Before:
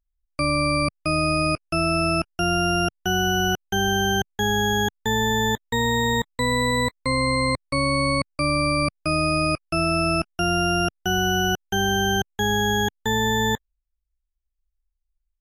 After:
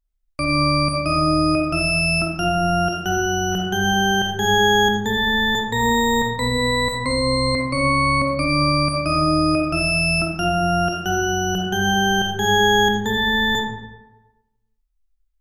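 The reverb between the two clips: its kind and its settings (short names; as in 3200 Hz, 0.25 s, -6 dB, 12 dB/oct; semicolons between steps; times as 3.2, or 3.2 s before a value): digital reverb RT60 1.1 s, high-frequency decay 0.65×, pre-delay 5 ms, DRR -1 dB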